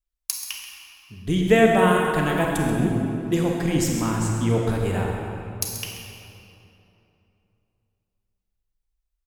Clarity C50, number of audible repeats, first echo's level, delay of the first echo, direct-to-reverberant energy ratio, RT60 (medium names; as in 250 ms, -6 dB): 0.0 dB, 1, -11.0 dB, 133 ms, -1.0 dB, 2.9 s